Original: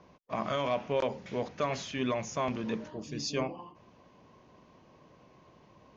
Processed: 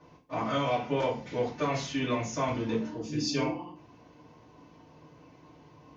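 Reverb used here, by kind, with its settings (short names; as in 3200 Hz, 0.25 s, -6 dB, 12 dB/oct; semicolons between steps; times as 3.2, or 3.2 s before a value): FDN reverb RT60 0.36 s, low-frequency decay 1.3×, high-frequency decay 0.95×, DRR -7 dB; gain -5 dB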